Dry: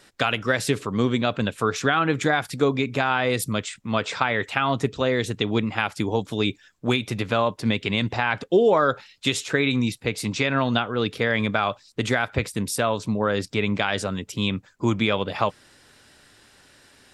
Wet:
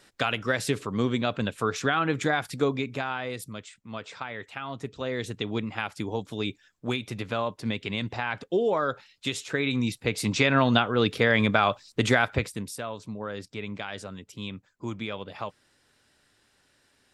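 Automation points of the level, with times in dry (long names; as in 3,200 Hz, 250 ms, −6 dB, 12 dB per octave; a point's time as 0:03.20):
0:02.63 −4 dB
0:03.52 −13.5 dB
0:04.70 −13.5 dB
0:05.24 −7 dB
0:09.43 −7 dB
0:10.38 +1 dB
0:12.25 +1 dB
0:12.78 −12 dB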